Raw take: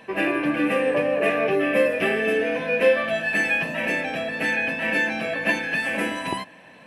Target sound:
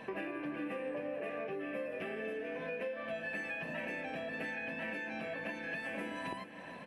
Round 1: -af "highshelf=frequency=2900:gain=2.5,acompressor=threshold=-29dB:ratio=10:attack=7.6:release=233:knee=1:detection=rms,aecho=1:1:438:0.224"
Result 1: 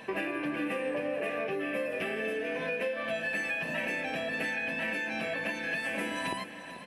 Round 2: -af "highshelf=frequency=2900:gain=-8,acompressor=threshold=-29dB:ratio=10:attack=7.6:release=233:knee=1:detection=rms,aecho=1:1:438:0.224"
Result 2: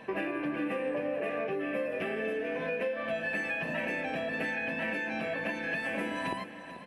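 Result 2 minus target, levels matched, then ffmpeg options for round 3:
downward compressor: peak gain reduction −7 dB
-af "highshelf=frequency=2900:gain=-8,acompressor=threshold=-36.5dB:ratio=10:attack=7.6:release=233:knee=1:detection=rms,aecho=1:1:438:0.224"

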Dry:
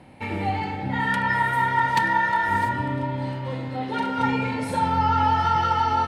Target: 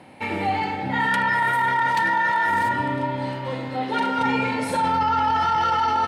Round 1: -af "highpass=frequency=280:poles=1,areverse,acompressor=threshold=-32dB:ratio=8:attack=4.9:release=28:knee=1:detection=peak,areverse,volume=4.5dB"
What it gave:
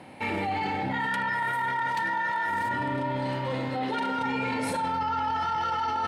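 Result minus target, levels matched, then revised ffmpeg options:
downward compressor: peak gain reduction +7.5 dB
-af "highpass=frequency=280:poles=1,areverse,acompressor=threshold=-23.5dB:ratio=8:attack=4.9:release=28:knee=1:detection=peak,areverse,volume=4.5dB"

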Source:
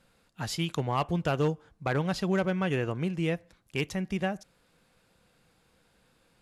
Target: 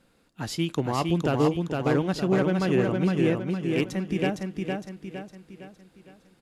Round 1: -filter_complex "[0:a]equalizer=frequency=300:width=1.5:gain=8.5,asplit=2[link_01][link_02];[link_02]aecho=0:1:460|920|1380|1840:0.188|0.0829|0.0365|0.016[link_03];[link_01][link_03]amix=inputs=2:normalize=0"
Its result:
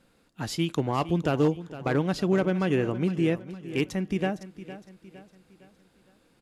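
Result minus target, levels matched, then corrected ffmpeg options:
echo-to-direct −11 dB
-filter_complex "[0:a]equalizer=frequency=300:width=1.5:gain=8.5,asplit=2[link_01][link_02];[link_02]aecho=0:1:460|920|1380|1840|2300|2760:0.668|0.294|0.129|0.0569|0.0251|0.011[link_03];[link_01][link_03]amix=inputs=2:normalize=0"

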